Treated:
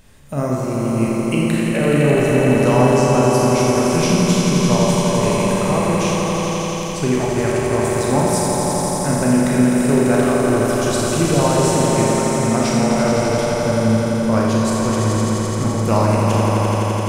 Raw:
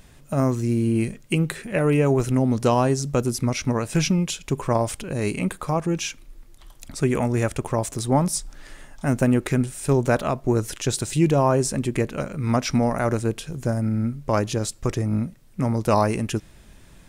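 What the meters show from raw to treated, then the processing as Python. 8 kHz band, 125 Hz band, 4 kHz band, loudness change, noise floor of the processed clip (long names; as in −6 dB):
+8.0 dB, +5.0 dB, +8.0 dB, +6.5 dB, −22 dBFS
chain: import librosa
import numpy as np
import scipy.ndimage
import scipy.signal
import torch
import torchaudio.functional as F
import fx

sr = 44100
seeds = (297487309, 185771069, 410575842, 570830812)

y = fx.echo_swell(x, sr, ms=85, loudest=5, wet_db=-6.5)
y = fx.rev_schroeder(y, sr, rt60_s=1.2, comb_ms=28, drr_db=-1.5)
y = y * librosa.db_to_amplitude(-1.0)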